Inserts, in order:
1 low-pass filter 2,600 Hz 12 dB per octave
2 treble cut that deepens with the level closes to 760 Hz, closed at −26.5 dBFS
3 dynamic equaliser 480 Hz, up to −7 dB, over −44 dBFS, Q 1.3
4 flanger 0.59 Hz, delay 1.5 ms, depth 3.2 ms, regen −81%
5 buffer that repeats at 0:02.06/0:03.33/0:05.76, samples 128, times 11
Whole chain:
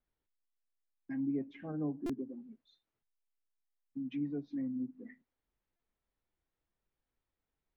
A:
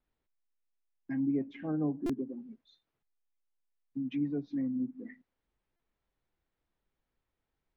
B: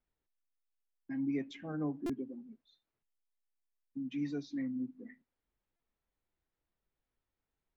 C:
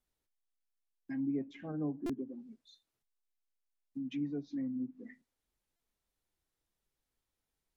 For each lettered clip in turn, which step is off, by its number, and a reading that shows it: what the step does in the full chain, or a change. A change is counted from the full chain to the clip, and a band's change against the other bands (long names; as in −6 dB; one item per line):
4, change in integrated loudness +4.5 LU
2, 2 kHz band +4.5 dB
1, change in momentary loudness spread +3 LU